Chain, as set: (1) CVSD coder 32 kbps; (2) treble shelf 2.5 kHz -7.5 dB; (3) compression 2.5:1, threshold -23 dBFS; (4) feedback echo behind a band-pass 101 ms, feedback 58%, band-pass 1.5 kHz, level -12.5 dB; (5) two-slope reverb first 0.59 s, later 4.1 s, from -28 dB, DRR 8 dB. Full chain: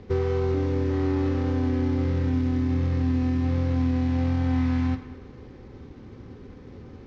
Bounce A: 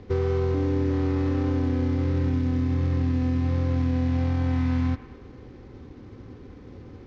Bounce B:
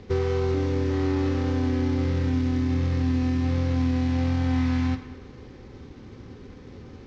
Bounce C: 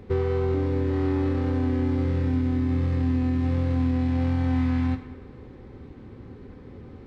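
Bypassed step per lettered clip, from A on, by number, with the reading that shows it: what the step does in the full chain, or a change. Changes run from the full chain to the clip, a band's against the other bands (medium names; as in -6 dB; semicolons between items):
5, echo-to-direct -6.5 dB to -12.0 dB; 2, 4 kHz band +5.0 dB; 1, 4 kHz band -1.5 dB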